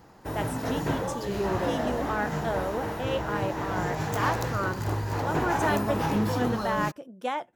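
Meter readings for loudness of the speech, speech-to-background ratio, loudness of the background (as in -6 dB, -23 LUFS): -33.0 LUFS, -3.0 dB, -30.0 LUFS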